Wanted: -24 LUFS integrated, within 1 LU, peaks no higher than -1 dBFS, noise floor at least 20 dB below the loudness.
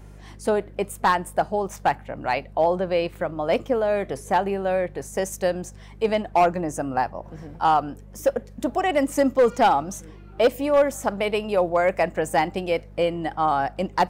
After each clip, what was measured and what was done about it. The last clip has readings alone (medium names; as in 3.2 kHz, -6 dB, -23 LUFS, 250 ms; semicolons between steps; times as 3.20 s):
clipped samples 0.4%; clipping level -11.5 dBFS; hum 50 Hz; highest harmonic 200 Hz; hum level -41 dBFS; loudness -23.5 LUFS; peak level -11.5 dBFS; loudness target -24.0 LUFS
-> clip repair -11.5 dBFS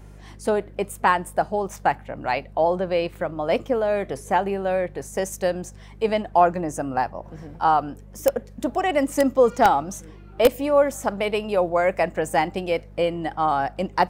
clipped samples 0.0%; hum 50 Hz; highest harmonic 200 Hz; hum level -41 dBFS
-> de-hum 50 Hz, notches 4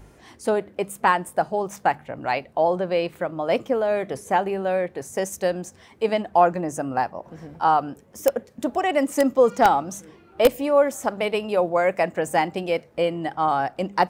hum not found; loudness -23.0 LUFS; peak level -2.5 dBFS; loudness target -24.0 LUFS
-> trim -1 dB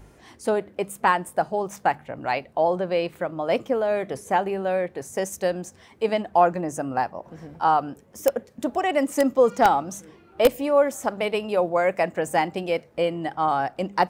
loudness -24.0 LUFS; peak level -3.5 dBFS; noise floor -54 dBFS